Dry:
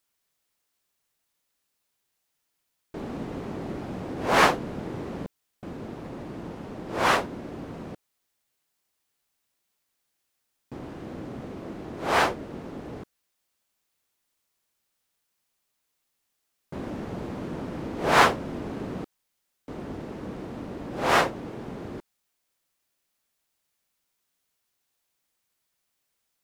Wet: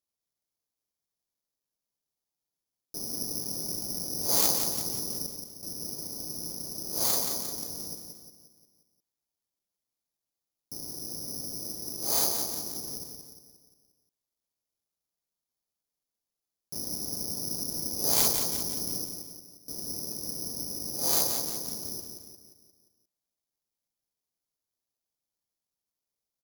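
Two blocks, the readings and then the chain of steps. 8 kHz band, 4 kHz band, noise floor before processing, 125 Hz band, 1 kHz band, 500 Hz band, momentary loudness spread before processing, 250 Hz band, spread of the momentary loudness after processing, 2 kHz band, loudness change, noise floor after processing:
+13.5 dB, +2.0 dB, -78 dBFS, -8.5 dB, -16.0 dB, -11.0 dB, 19 LU, -9.0 dB, 16 LU, -20.5 dB, -0.5 dB, under -85 dBFS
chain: self-modulated delay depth 0.35 ms; treble shelf 2.1 kHz -11 dB; feedback delay 176 ms, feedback 50%, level -6 dB; careless resampling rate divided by 8×, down filtered, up zero stuff; peaking EQ 1.6 kHz -7.5 dB 1.2 oct; trim -9.5 dB

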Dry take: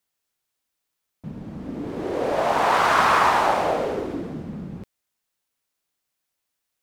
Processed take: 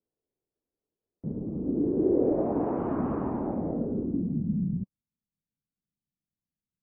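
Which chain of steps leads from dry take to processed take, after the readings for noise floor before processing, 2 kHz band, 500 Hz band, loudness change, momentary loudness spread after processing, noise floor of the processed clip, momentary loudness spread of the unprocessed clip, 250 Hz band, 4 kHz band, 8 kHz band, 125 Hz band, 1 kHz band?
-81 dBFS, under -30 dB, -4.5 dB, -8.0 dB, 11 LU, under -85 dBFS, 20 LU, +4.5 dB, under -40 dB, under -40 dB, +3.0 dB, -19.5 dB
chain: low-pass sweep 420 Hz -> 190 Hz, 1.31–4.76 s; MP3 16 kbps 16 kHz

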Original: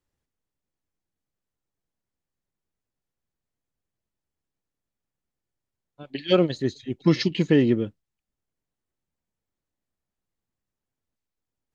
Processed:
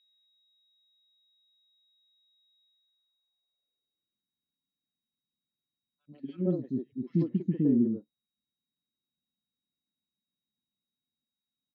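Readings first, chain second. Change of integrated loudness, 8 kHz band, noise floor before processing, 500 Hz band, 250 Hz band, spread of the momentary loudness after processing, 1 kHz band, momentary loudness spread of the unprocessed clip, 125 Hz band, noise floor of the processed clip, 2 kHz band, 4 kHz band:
-7.0 dB, no reading, under -85 dBFS, -12.5 dB, -5.0 dB, 13 LU, under -20 dB, 14 LU, -6.0 dB, under -85 dBFS, under -30 dB, under -25 dB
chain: peaking EQ 190 Hz +3.5 dB 2.9 oct; three bands offset in time highs, lows, mids 90/140 ms, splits 350/1500 Hz; whistle 3.8 kHz -56 dBFS; band-pass sweep 2.3 kHz -> 230 Hz, 2.64–4.23 s; trim -3 dB

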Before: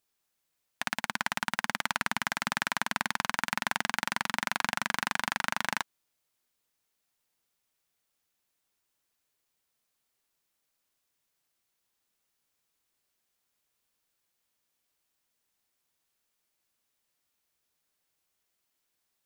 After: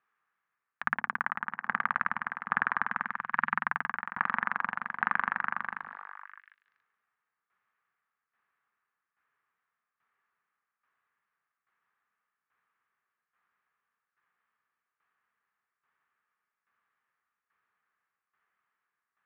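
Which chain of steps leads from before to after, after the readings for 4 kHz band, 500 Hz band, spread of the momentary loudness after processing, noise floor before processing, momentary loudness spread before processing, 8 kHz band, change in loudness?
-20.5 dB, -7.5 dB, 9 LU, -81 dBFS, 2 LU, under -35 dB, -0.5 dB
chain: cabinet simulation 100–2000 Hz, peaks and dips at 300 Hz -9 dB, 590 Hz -8 dB, 1.2 kHz +10 dB, 1.7 kHz +6 dB; hum notches 50/100/150 Hz; on a send: repeats whose band climbs or falls 142 ms, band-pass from 360 Hz, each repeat 0.7 oct, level -10 dB; on the sum: tremolo saw down 1.2 Hz, depth 75%; tape noise reduction on one side only encoder only

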